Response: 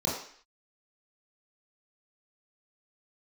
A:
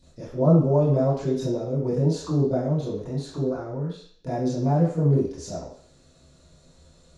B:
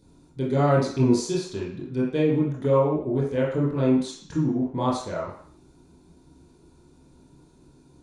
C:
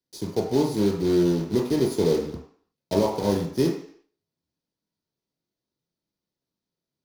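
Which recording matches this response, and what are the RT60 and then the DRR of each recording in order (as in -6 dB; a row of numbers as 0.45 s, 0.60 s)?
B; 0.55 s, 0.55 s, 0.55 s; -14.5 dB, -7.0 dB, -0.5 dB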